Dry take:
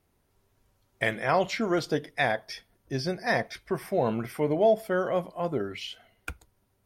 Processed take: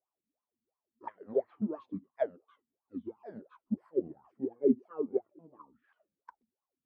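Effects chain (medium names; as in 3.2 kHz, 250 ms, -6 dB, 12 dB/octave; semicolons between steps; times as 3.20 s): sawtooth pitch modulation -11.5 st, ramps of 539 ms; wah-wah 2.9 Hz 210–1100 Hz, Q 11; upward expansion 1.5:1, over -53 dBFS; trim +8 dB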